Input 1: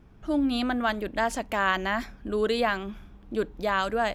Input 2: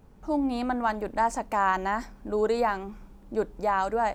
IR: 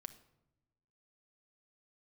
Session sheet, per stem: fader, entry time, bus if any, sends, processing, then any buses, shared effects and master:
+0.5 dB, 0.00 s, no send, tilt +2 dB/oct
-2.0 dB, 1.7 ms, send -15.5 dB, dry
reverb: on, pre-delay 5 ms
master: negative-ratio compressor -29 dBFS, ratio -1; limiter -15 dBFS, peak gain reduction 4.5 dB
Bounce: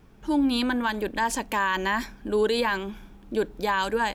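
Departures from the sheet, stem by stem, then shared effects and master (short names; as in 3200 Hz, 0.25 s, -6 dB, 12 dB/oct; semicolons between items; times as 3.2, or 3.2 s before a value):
stem 2: polarity flipped; master: missing negative-ratio compressor -29 dBFS, ratio -1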